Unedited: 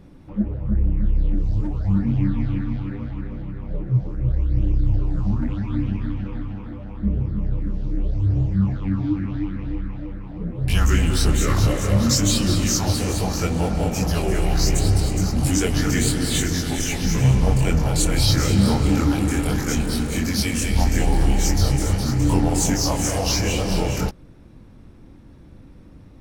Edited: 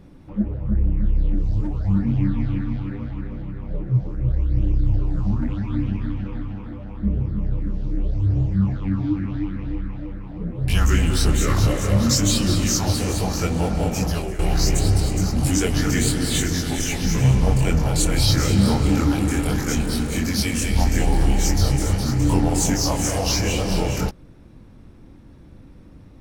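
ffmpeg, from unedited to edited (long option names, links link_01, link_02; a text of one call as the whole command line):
ffmpeg -i in.wav -filter_complex "[0:a]asplit=2[link_01][link_02];[link_01]atrim=end=14.39,asetpts=PTS-STARTPTS,afade=type=out:start_time=13.93:duration=0.46:curve=qsin:silence=0.211349[link_03];[link_02]atrim=start=14.39,asetpts=PTS-STARTPTS,afade=type=in:duration=0.004:curve=hsin:silence=0.211349[link_04];[link_03][link_04]concat=n=2:v=0:a=1" out.wav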